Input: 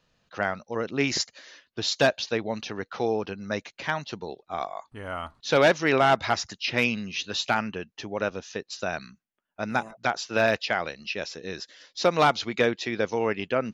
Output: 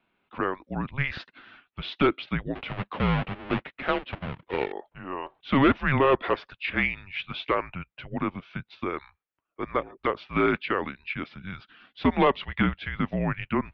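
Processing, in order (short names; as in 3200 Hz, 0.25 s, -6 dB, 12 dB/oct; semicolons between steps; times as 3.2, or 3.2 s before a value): 2.55–4.72 half-waves squared off; mistuned SSB -280 Hz 350–3400 Hz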